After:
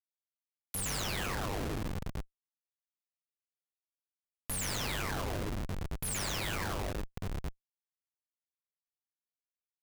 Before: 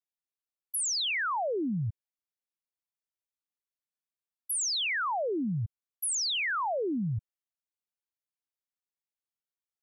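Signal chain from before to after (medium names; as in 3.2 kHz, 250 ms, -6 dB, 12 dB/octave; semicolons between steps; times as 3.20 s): reverberation RT60 0.45 s, pre-delay 118 ms, DRR -4 dB; compression 20:1, threshold -32 dBFS, peak gain reduction 13.5 dB; companded quantiser 6-bit; 6.55–7.17 s: high-pass 480 Hz 12 dB/octave; ring modulator 50 Hz; Schmitt trigger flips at -38 dBFS; trim +7.5 dB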